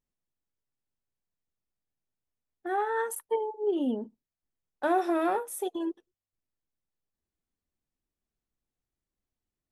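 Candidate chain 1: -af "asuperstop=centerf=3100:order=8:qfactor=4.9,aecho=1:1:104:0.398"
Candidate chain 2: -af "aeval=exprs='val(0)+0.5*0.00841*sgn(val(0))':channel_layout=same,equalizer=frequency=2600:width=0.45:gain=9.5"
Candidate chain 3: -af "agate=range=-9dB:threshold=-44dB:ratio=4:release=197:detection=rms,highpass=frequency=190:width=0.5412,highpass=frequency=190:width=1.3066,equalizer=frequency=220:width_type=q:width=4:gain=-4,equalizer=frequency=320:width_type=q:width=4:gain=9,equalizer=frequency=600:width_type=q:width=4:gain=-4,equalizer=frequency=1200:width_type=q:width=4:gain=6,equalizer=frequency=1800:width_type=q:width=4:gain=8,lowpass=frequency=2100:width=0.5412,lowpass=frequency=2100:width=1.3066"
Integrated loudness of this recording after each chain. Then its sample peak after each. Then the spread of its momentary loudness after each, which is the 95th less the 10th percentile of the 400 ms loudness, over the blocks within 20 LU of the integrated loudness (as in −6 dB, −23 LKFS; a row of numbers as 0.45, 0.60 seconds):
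−30.0, −27.0, −27.0 LKFS; −15.0, −12.5, −11.5 dBFS; 10, 22, 9 LU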